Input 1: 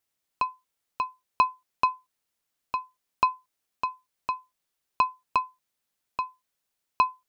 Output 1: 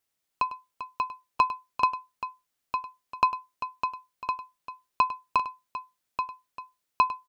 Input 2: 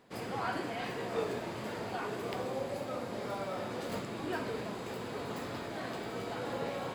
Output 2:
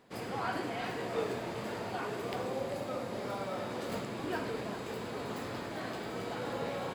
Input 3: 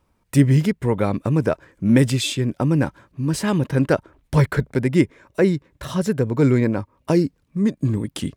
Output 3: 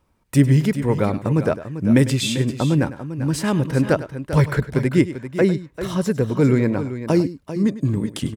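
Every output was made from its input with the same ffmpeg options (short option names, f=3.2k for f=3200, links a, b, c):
-af "aecho=1:1:101|394:0.178|0.266"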